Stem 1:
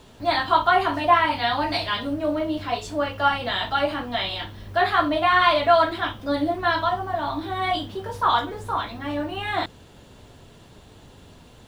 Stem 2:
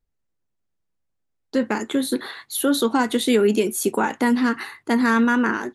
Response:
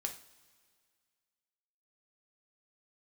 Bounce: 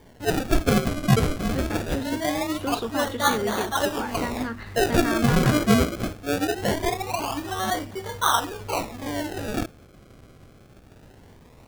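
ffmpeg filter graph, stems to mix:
-filter_complex "[0:a]acrusher=samples=33:mix=1:aa=0.000001:lfo=1:lforange=33:lforate=0.22,volume=-1.5dB[link_01];[1:a]lowpass=5000,bandreject=frequency=60:width_type=h:width=6,bandreject=frequency=120:width_type=h:width=6,bandreject=frequency=180:width_type=h:width=6,bandreject=frequency=240:width_type=h:width=6,volume=-10dB[link_02];[link_01][link_02]amix=inputs=2:normalize=0"

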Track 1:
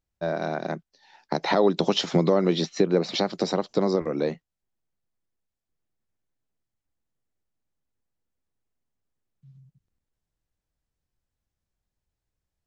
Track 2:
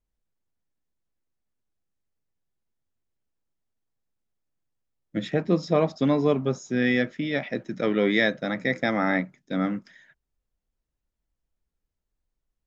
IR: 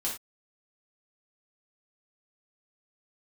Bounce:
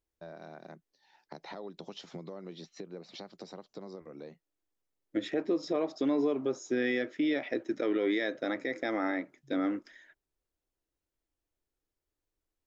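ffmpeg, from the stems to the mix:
-filter_complex "[0:a]acompressor=threshold=-40dB:ratio=2,volume=-10.5dB[link_01];[1:a]lowshelf=frequency=240:width_type=q:width=3:gain=-9,volume=-2.5dB[link_02];[link_01][link_02]amix=inputs=2:normalize=0,alimiter=limit=-21dB:level=0:latency=1:release=144"

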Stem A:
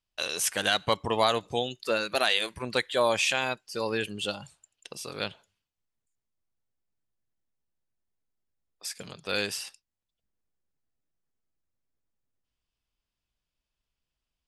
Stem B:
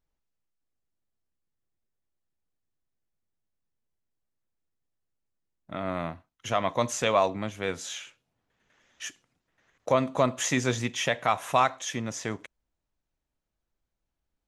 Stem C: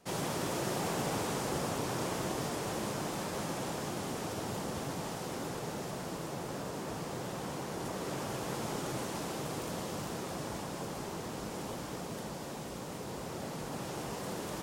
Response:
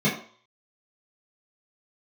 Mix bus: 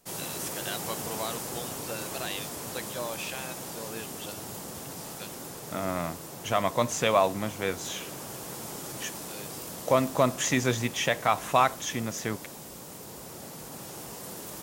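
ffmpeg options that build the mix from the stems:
-filter_complex "[0:a]volume=-11.5dB[link_01];[1:a]volume=0.5dB,asplit=2[link_02][link_03];[2:a]aemphasis=mode=production:type=50fm,volume=-4dB[link_04];[link_03]apad=whole_len=638275[link_05];[link_01][link_05]sidechaincompress=threshold=-41dB:ratio=8:attack=16:release=1310[link_06];[link_06][link_02][link_04]amix=inputs=3:normalize=0"

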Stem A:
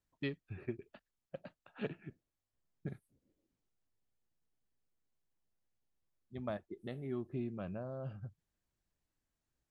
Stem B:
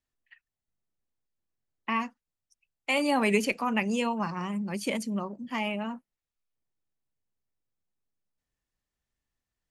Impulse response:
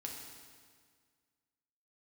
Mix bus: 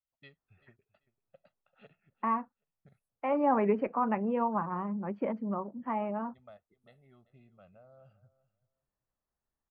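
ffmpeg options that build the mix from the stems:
-filter_complex "[0:a]aecho=1:1:1.5:0.72,volume=-14dB,asplit=2[link_01][link_02];[link_02]volume=-18dB[link_03];[1:a]lowpass=frequency=1300:width=0.5412,lowpass=frequency=1300:width=1.3066,adelay=350,volume=3dB[link_04];[link_03]aecho=0:1:388|776|1164:1|0.18|0.0324[link_05];[link_01][link_04][link_05]amix=inputs=3:normalize=0,lowshelf=frequency=390:gain=-8"

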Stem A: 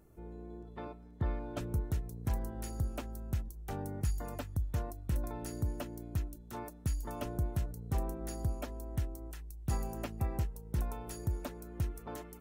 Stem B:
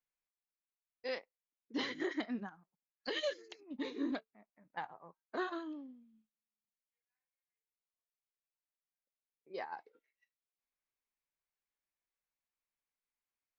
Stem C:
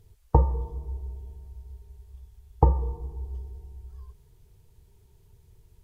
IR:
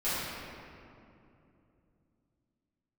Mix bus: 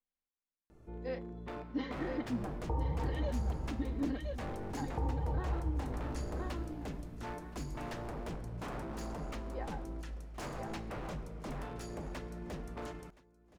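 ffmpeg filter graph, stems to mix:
-filter_complex "[0:a]lowpass=5900,aeval=exprs='0.0126*(abs(mod(val(0)/0.0126+3,4)-2)-1)':channel_layout=same,adelay=700,volume=1dB,asplit=3[link_01][link_02][link_03];[link_02]volume=-17.5dB[link_04];[link_03]volume=-20dB[link_05];[1:a]lowpass=frequency=1700:poles=1,lowshelf=frequency=300:gain=7.5,aecho=1:1:3.8:0.56,volume=-4.5dB,asplit=3[link_06][link_07][link_08];[link_07]volume=-4.5dB[link_09];[2:a]adelay=2350,volume=-8dB,asplit=2[link_10][link_11];[link_11]volume=-9.5dB[link_12];[link_08]apad=whole_len=361135[link_13];[link_10][link_13]sidechaincompress=threshold=-49dB:ratio=8:attack=16:release=685[link_14];[3:a]atrim=start_sample=2205[link_15];[link_04][link_12]amix=inputs=2:normalize=0[link_16];[link_16][link_15]afir=irnorm=-1:irlink=0[link_17];[link_05][link_09]amix=inputs=2:normalize=0,aecho=0:1:1021|2042|3063|4084:1|0.25|0.0625|0.0156[link_18];[link_01][link_06][link_14][link_17][link_18]amix=inputs=5:normalize=0,alimiter=level_in=1.5dB:limit=-24dB:level=0:latency=1:release=264,volume=-1.5dB"

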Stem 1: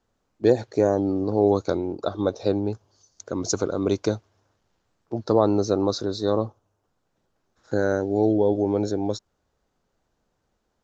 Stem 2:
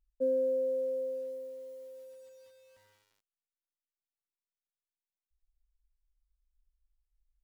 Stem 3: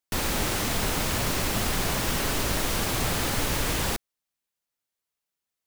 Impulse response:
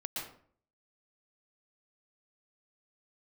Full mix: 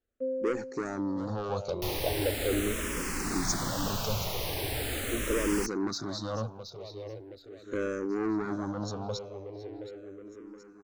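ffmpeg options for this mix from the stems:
-filter_complex "[0:a]asoftclip=type=tanh:threshold=-21.5dB,volume=-1dB,asplit=2[link_01][link_02];[link_02]volume=-11.5dB[link_03];[1:a]lowpass=1100,volume=0dB[link_04];[2:a]adelay=1700,volume=-4dB[link_05];[link_03]aecho=0:1:722|1444|2166|2888|3610|4332|5054:1|0.51|0.26|0.133|0.0677|0.0345|0.0176[link_06];[link_01][link_04][link_05][link_06]amix=inputs=4:normalize=0,agate=range=-10dB:threshold=-58dB:ratio=16:detection=peak,asplit=2[link_07][link_08];[link_08]afreqshift=-0.4[link_09];[link_07][link_09]amix=inputs=2:normalize=1"

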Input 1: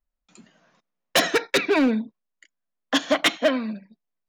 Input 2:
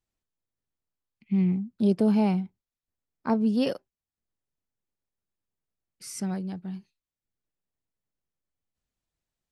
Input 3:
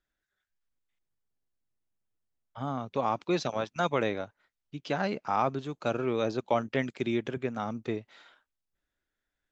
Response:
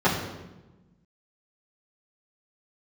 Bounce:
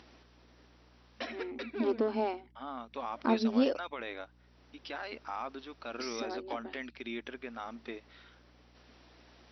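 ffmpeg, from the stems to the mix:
-filter_complex "[0:a]adelay=50,volume=-19.5dB[link_01];[1:a]acompressor=mode=upward:threshold=-24dB:ratio=2.5,asoftclip=type=hard:threshold=-16.5dB,volume=-1.5dB[link_02];[2:a]equalizer=frequency=370:width=0.4:gain=-13,alimiter=level_in=4.5dB:limit=-24dB:level=0:latency=1:release=44,volume=-4.5dB,volume=2.5dB,asplit=2[link_03][link_04];[link_04]apad=whole_len=191179[link_05];[link_01][link_05]sidechaincompress=threshold=-58dB:ratio=6:attack=45:release=290[link_06];[link_06][link_02][link_03]amix=inputs=3:normalize=0,afftfilt=real='re*between(b*sr/4096,220,5900)':imag='im*between(b*sr/4096,220,5900)':win_size=4096:overlap=0.75,highshelf=frequency=3100:gain=-6.5,aeval=exprs='val(0)+0.000794*(sin(2*PI*60*n/s)+sin(2*PI*2*60*n/s)/2+sin(2*PI*3*60*n/s)/3+sin(2*PI*4*60*n/s)/4+sin(2*PI*5*60*n/s)/5)':channel_layout=same"

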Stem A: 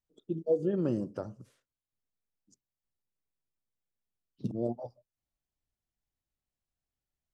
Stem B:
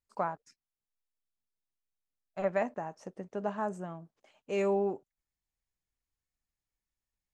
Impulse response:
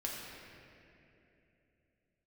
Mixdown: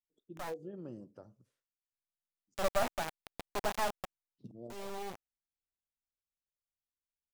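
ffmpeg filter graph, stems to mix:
-filter_complex "[0:a]volume=-16dB,asplit=2[link_01][link_02];[1:a]adynamicequalizer=threshold=0.00562:dfrequency=1000:dqfactor=1.3:tfrequency=1000:tqfactor=1.3:attack=5:release=100:ratio=0.375:range=1.5:mode=boostabove:tftype=bell,acrusher=bits=3:dc=4:mix=0:aa=0.000001,adelay=200,volume=1dB[link_03];[link_02]apad=whole_len=332073[link_04];[link_03][link_04]sidechaincompress=threshold=-57dB:ratio=8:attack=49:release=1490[link_05];[link_01][link_05]amix=inputs=2:normalize=0,adynamicequalizer=threshold=0.00251:dfrequency=770:dqfactor=2.3:tfrequency=770:tqfactor=2.3:attack=5:release=100:ratio=0.375:range=2.5:mode=boostabove:tftype=bell"

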